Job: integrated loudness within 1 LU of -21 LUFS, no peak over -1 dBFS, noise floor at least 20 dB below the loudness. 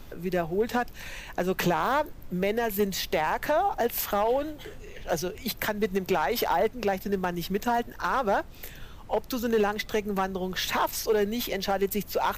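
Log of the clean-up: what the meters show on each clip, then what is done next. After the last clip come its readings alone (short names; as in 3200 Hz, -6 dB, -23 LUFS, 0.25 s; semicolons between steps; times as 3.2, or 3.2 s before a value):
clipped 0.8%; flat tops at -17.5 dBFS; noise floor -44 dBFS; noise floor target -48 dBFS; loudness -28.0 LUFS; peak -17.5 dBFS; loudness target -21.0 LUFS
-> clip repair -17.5 dBFS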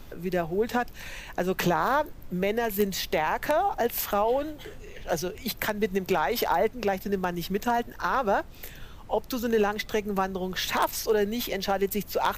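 clipped 0.0%; noise floor -44 dBFS; noise floor target -48 dBFS
-> noise print and reduce 6 dB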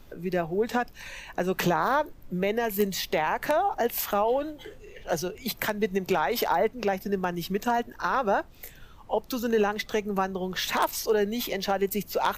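noise floor -49 dBFS; loudness -27.5 LUFS; peak -8.5 dBFS; loudness target -21.0 LUFS
-> gain +6.5 dB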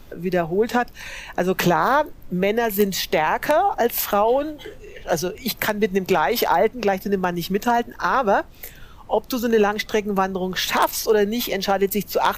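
loudness -21.0 LUFS; peak -2.0 dBFS; noise floor -43 dBFS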